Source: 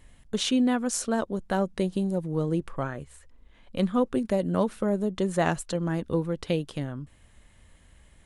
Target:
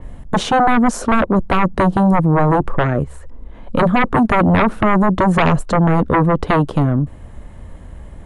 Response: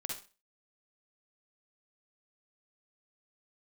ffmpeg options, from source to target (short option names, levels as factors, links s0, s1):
-filter_complex "[0:a]acrossover=split=440[s0][s1];[s1]acompressor=threshold=0.0447:ratio=2.5[s2];[s0][s2]amix=inputs=2:normalize=0,acrossover=split=1200[s3][s4];[s3]aeval=exprs='0.211*sin(PI/2*4.47*val(0)/0.211)':c=same[s5];[s5][s4]amix=inputs=2:normalize=0,adynamicequalizer=threshold=0.0126:dfrequency=4200:dqfactor=0.7:tfrequency=4200:tqfactor=0.7:attack=5:release=100:ratio=0.375:range=2:mode=cutabove:tftype=highshelf,volume=1.68"